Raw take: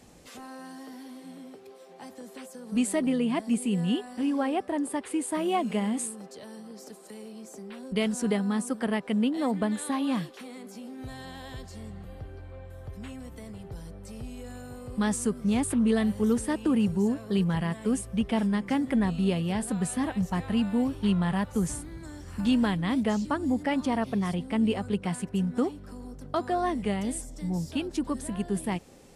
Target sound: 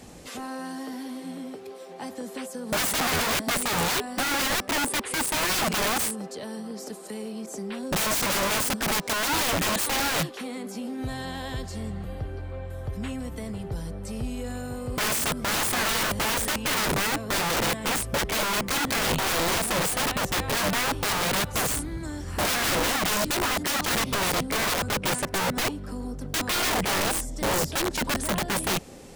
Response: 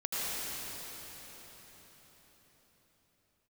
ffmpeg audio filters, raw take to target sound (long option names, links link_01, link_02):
-filter_complex "[0:a]asettb=1/sr,asplit=3[link_01][link_02][link_03];[link_01]atrim=end=7.464[link_04];[link_02]atrim=start=7.46:end=9.86,asetpts=PTS-STARTPTS,afade=type=in:duration=0.004:curve=qsin,afade=type=out:start_time=2.396:duration=0.004:curve=qsin,adynamicequalizer=threshold=0.00282:dfrequency=6300:dqfactor=0.76:tfrequency=6300:tqfactor=0.76:attack=5:release=100:ratio=0.375:range=3.5:mode=boostabove:tftype=bell[link_05];[link_03]atrim=start=9.856[link_06];[link_04][link_05]acrossfade=duration=0.004:curve1=hsin:curve2=qsin[link_07];[link_07][link_06]acrossfade=duration=0.004:curve1=qsin:curve2=hsin,aeval=exprs='(mod(26.6*val(0)+1,2)-1)/26.6':channel_layout=same,volume=8dB"